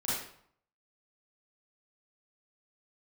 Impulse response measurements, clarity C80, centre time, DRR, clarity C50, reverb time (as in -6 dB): 4.0 dB, 68 ms, -10.0 dB, -2.0 dB, 0.60 s